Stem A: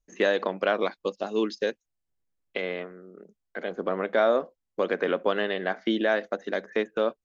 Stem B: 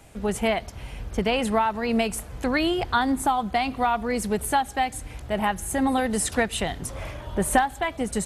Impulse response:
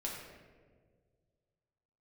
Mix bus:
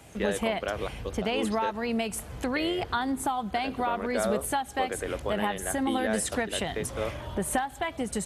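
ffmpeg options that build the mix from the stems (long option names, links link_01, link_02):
-filter_complex "[0:a]volume=-7.5dB[link_01];[1:a]acompressor=threshold=-31dB:ratio=2,volume=0.5dB[link_02];[link_01][link_02]amix=inputs=2:normalize=0,highpass=60,equalizer=frequency=3100:width_type=o:width=0.28:gain=2"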